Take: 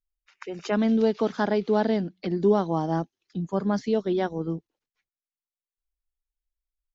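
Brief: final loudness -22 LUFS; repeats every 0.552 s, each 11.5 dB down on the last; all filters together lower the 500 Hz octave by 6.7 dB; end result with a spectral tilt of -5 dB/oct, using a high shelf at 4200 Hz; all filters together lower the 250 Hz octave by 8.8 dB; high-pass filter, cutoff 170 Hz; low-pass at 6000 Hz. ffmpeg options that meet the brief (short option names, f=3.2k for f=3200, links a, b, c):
-af "highpass=170,lowpass=6k,equalizer=f=250:t=o:g=-8.5,equalizer=f=500:t=o:g=-5.5,highshelf=f=4.2k:g=-6,aecho=1:1:552|1104|1656:0.266|0.0718|0.0194,volume=10dB"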